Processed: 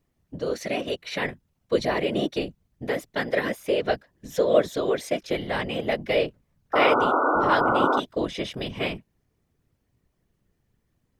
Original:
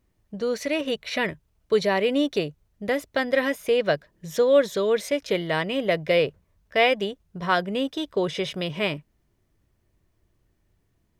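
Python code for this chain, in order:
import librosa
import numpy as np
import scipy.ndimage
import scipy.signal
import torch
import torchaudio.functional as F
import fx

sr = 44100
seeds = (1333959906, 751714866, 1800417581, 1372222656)

y = fx.whisperise(x, sr, seeds[0])
y = fx.spec_paint(y, sr, seeds[1], shape='noise', start_s=6.73, length_s=1.27, low_hz=240.0, high_hz=1500.0, level_db=-19.0)
y = y * librosa.db_to_amplitude(-2.5)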